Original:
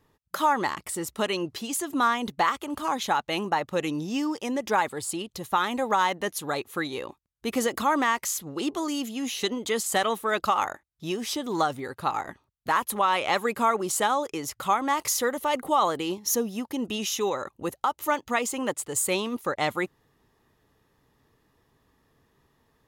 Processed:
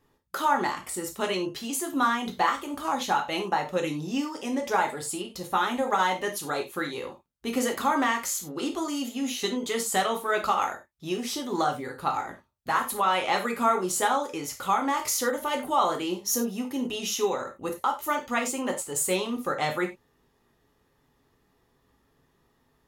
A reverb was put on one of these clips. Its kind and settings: gated-style reverb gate 120 ms falling, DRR 1.5 dB; trim -3 dB

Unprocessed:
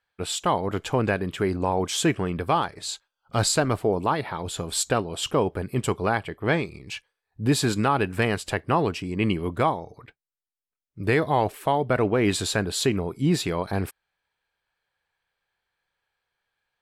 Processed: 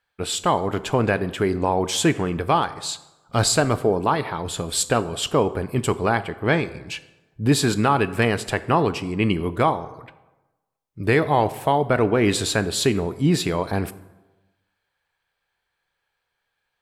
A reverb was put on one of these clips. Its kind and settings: plate-style reverb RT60 1.1 s, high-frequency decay 0.6×, DRR 13.5 dB; trim +3 dB

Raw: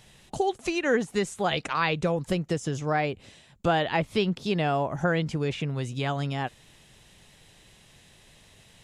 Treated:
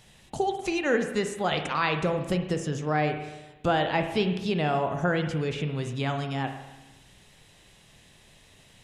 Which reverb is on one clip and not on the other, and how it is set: spring tank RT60 1.1 s, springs 33/51 ms, chirp 75 ms, DRR 6 dB; trim -1 dB

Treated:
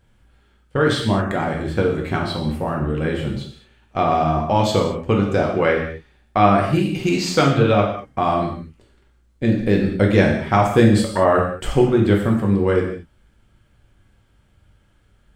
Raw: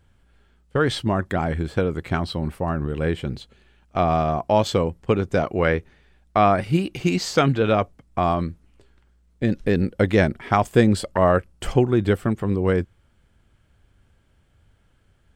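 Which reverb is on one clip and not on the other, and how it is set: gated-style reverb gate 250 ms falling, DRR -0.5 dB

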